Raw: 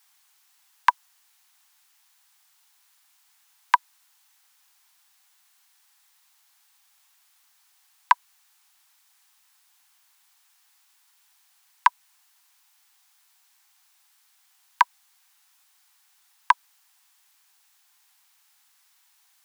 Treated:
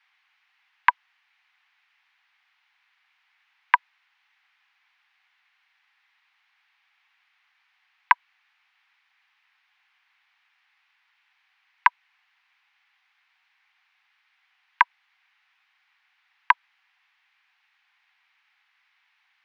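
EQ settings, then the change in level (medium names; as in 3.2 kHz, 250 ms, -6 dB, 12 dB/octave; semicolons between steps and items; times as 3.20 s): distance through air 290 m; peaking EQ 2.2 kHz +13 dB 1.3 oct; -3.0 dB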